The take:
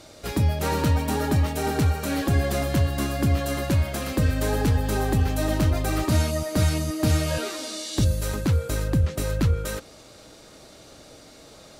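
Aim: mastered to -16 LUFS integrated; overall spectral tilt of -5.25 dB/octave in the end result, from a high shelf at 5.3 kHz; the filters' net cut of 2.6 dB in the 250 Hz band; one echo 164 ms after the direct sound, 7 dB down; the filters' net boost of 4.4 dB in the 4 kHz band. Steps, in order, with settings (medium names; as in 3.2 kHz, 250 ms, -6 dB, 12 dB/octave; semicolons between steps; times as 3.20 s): peaking EQ 250 Hz -3.5 dB; peaking EQ 4 kHz +7 dB; treble shelf 5.3 kHz -4 dB; delay 164 ms -7 dB; trim +8 dB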